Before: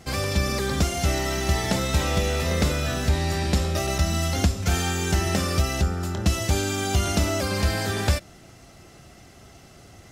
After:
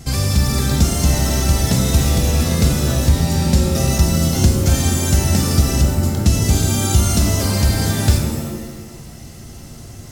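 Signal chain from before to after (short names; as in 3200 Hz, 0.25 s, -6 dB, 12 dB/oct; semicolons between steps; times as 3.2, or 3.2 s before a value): tone controls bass +12 dB, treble +10 dB; in parallel at -0.5 dB: compressor, threshold -23 dBFS, peak gain reduction 17.5 dB; on the sum: shimmer reverb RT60 1.1 s, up +7 st, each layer -2 dB, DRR 5 dB; gain -4 dB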